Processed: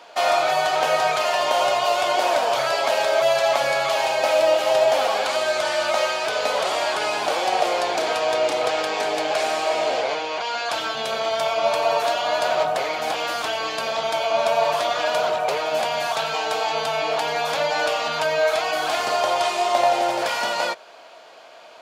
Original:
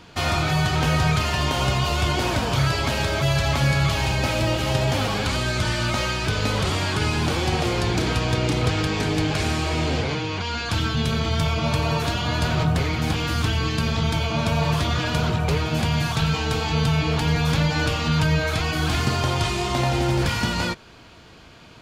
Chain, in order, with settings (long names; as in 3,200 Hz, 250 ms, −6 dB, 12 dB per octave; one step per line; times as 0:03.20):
high-pass with resonance 630 Hz, resonance Q 3.8